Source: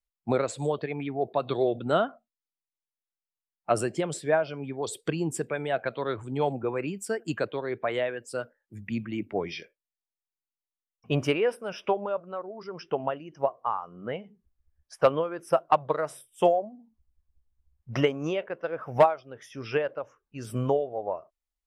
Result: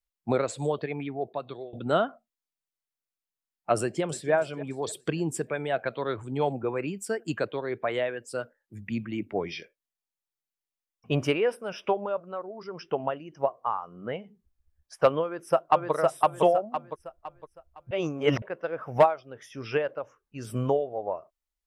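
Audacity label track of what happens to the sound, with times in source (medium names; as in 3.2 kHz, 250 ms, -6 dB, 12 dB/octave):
0.940000	1.730000	fade out, to -24 dB
3.800000	4.330000	echo throw 290 ms, feedback 40%, level -16 dB
15.240000	15.930000	echo throw 510 ms, feedback 35%, level -1 dB
17.910000	18.420000	reverse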